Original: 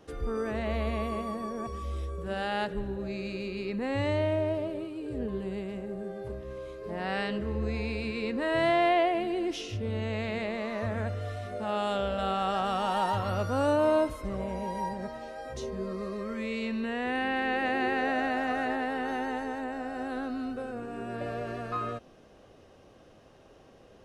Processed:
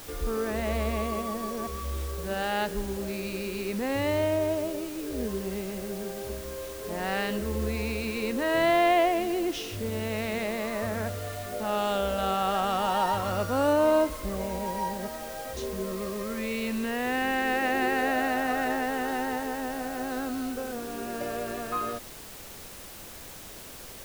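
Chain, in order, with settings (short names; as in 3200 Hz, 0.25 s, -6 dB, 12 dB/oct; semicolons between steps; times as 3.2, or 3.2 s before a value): bell 120 Hz -11.5 dB 0.49 oct; in parallel at -10 dB: requantised 6-bit, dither triangular; on the sum: added noise pink -49 dBFS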